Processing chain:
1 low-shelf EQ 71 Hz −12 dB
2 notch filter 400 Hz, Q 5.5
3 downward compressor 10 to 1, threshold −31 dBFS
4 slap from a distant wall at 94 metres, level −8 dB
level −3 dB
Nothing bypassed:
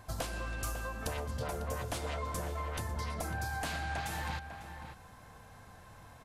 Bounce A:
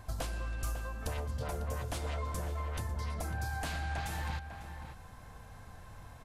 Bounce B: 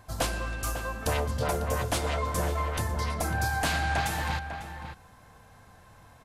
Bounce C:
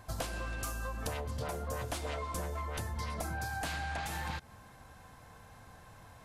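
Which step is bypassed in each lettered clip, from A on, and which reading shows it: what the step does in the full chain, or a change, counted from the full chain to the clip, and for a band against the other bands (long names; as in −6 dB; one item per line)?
1, 125 Hz band +4.5 dB
3, average gain reduction 5.5 dB
4, echo-to-direct ratio −9.5 dB to none audible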